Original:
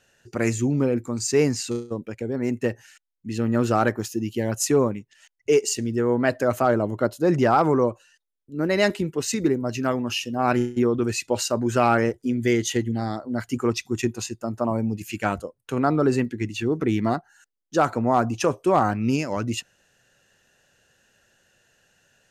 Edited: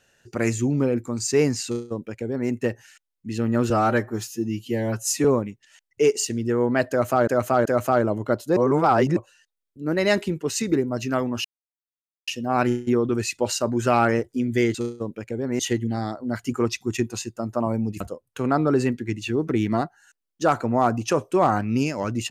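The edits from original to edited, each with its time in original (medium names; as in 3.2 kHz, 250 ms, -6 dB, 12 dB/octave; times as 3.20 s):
1.65–2.50 s: copy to 12.64 s
3.70–4.73 s: stretch 1.5×
6.38–6.76 s: loop, 3 plays
7.29–7.89 s: reverse
10.17 s: insert silence 0.83 s
15.05–15.33 s: delete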